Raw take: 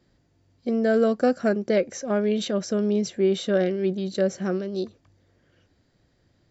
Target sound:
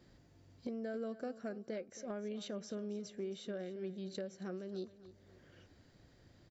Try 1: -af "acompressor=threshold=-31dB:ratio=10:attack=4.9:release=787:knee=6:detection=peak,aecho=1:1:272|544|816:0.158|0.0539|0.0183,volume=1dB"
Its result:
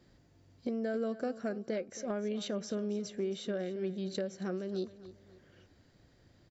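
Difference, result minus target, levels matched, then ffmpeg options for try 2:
compressor: peak gain reduction -7 dB
-af "acompressor=threshold=-38.5dB:ratio=10:attack=4.9:release=787:knee=6:detection=peak,aecho=1:1:272|544|816:0.158|0.0539|0.0183,volume=1dB"

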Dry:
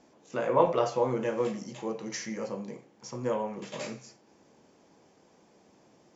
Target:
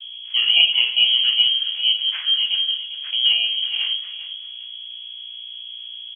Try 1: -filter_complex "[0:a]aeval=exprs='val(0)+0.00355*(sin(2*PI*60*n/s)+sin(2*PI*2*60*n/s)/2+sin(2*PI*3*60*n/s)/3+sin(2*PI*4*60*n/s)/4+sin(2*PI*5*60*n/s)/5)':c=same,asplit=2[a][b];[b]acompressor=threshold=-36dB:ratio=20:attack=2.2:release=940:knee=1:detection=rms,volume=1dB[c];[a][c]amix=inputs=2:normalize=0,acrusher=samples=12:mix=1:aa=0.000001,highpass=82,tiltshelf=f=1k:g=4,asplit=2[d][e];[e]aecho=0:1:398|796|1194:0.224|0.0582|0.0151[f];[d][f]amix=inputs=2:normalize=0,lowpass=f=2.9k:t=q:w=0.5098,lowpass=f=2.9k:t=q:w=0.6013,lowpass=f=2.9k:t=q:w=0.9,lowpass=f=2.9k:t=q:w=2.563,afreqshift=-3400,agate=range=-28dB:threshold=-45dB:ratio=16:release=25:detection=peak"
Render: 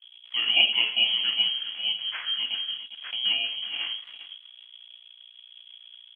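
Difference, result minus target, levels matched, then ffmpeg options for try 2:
compressor: peak gain reduction +10.5 dB; 1000 Hz band +10.0 dB
-filter_complex "[0:a]aeval=exprs='val(0)+0.00355*(sin(2*PI*60*n/s)+sin(2*PI*2*60*n/s)/2+sin(2*PI*3*60*n/s)/3+sin(2*PI*4*60*n/s)/4+sin(2*PI*5*60*n/s)/5)':c=same,asplit=2[a][b];[b]acompressor=threshold=-25dB:ratio=20:attack=2.2:release=940:knee=1:detection=rms,volume=1dB[c];[a][c]amix=inputs=2:normalize=0,acrusher=samples=12:mix=1:aa=0.000001,highpass=82,tiltshelf=f=1k:g=12,asplit=2[d][e];[e]aecho=0:1:398|796|1194:0.224|0.0582|0.0151[f];[d][f]amix=inputs=2:normalize=0,lowpass=f=2.9k:t=q:w=0.5098,lowpass=f=2.9k:t=q:w=0.6013,lowpass=f=2.9k:t=q:w=0.9,lowpass=f=2.9k:t=q:w=2.563,afreqshift=-3400,agate=range=-28dB:threshold=-45dB:ratio=16:release=25:detection=peak"

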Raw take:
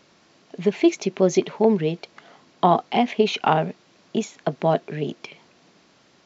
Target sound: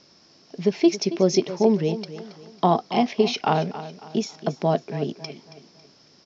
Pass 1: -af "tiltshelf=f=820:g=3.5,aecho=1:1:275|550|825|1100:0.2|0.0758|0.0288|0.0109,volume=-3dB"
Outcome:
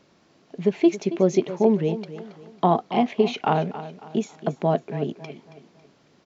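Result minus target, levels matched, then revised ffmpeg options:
4000 Hz band -6.5 dB
-af "lowpass=f=5.3k:t=q:w=9.9,tiltshelf=f=820:g=3.5,aecho=1:1:275|550|825|1100:0.2|0.0758|0.0288|0.0109,volume=-3dB"

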